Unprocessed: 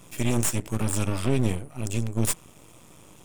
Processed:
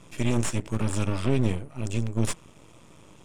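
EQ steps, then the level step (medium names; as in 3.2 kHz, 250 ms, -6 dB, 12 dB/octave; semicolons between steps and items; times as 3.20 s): distance through air 61 m; band-stop 750 Hz, Q 18; 0.0 dB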